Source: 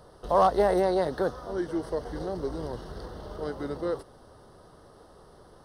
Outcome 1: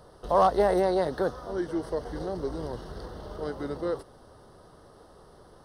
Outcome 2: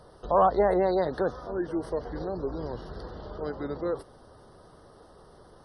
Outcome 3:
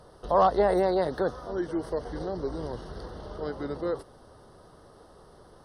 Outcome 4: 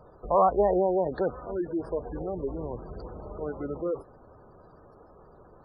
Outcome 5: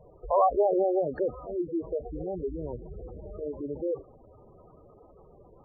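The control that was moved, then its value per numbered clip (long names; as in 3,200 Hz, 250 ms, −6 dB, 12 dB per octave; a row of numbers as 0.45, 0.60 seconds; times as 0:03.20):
gate on every frequency bin, under each frame's peak: −60, −35, −45, −20, −10 decibels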